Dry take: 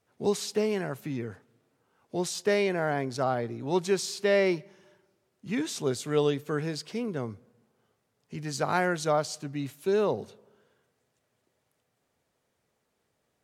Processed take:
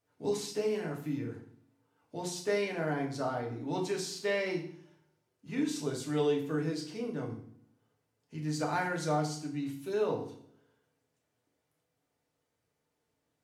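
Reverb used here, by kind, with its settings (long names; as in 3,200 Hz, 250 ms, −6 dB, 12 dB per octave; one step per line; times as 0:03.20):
feedback delay network reverb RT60 0.54 s, low-frequency decay 1.5×, high-frequency decay 0.95×, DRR −1 dB
level −9 dB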